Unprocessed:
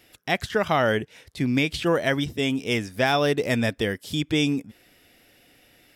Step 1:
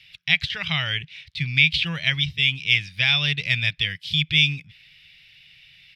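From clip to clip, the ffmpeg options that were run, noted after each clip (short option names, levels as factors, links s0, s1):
-af "firequalizer=gain_entry='entry(110,0);entry(160,5);entry(220,-22);entry(430,-23);entry(950,-13);entry(1500,-6);entry(2300,11);entry(3900,10);entry(7000,-11);entry(12000,-16)':delay=0.05:min_phase=1"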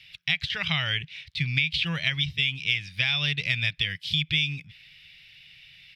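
-af "acompressor=threshold=0.0891:ratio=6"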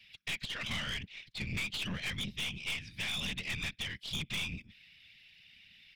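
-af "afftfilt=real='hypot(re,im)*cos(2*PI*random(0))':imag='hypot(re,im)*sin(2*PI*random(1))':win_size=512:overlap=0.75,aeval=exprs='(tanh(39.8*val(0)+0.45)-tanh(0.45))/39.8':c=same"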